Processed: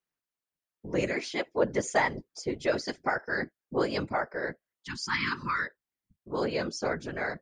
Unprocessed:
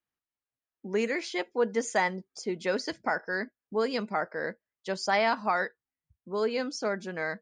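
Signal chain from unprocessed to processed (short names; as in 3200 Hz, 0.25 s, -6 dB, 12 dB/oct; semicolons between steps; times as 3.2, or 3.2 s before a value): spectral repair 4.78–5.64, 340–950 Hz both; whisperiser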